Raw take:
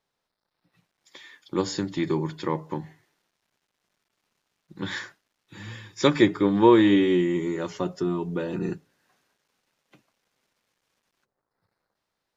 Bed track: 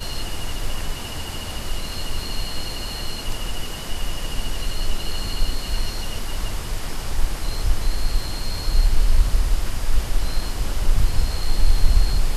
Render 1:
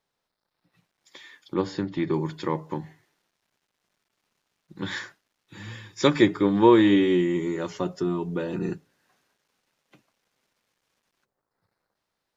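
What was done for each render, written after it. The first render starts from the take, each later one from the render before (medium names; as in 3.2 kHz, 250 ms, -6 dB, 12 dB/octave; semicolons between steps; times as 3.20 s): 1.54–2.14 s: Bessel low-pass 2.8 kHz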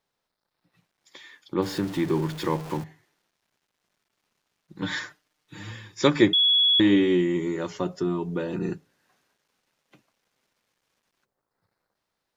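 1.62–2.84 s: jump at every zero crossing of -34 dBFS; 4.81–5.71 s: comb 6.6 ms, depth 74%; 6.33–6.80 s: bleep 3.37 kHz -16.5 dBFS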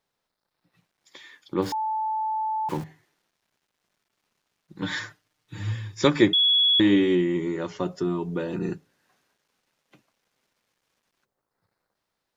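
1.72–2.69 s: bleep 873 Hz -24 dBFS; 4.99–6.05 s: peaking EQ 100 Hz +13.5 dB; 7.15–7.80 s: distance through air 61 m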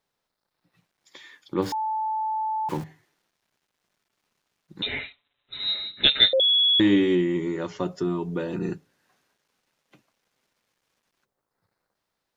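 4.82–6.40 s: frequency inversion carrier 3.9 kHz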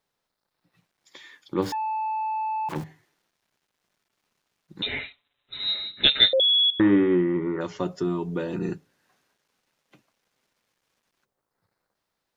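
1.71–2.76 s: transformer saturation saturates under 1.4 kHz; 6.70–7.61 s: resonant low-pass 1.3 kHz, resonance Q 3.2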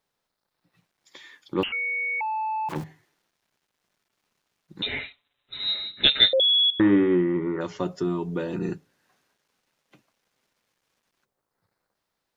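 1.63–2.21 s: frequency inversion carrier 3.1 kHz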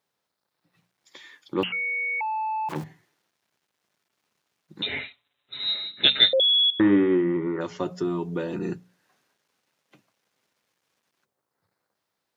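high-pass 87 Hz; hum notches 60/120/180/240 Hz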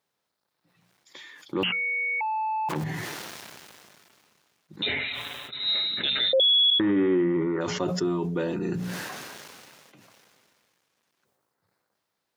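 peak limiter -16.5 dBFS, peak gain reduction 11.5 dB; decay stretcher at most 24 dB/s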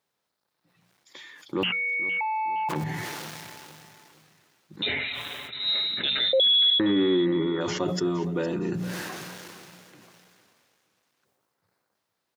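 feedback delay 463 ms, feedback 37%, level -16 dB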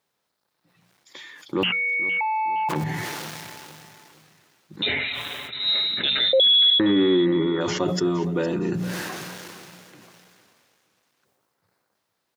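trim +3.5 dB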